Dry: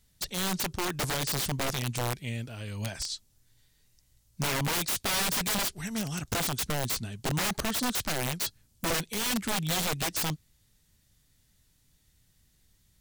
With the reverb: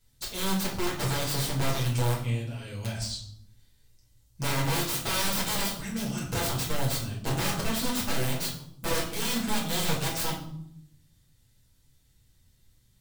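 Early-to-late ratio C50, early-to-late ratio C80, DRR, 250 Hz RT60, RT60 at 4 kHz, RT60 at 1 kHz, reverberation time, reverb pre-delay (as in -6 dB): 6.0 dB, 9.5 dB, -5.5 dB, 1.1 s, 0.50 s, 0.65 s, 0.70 s, 6 ms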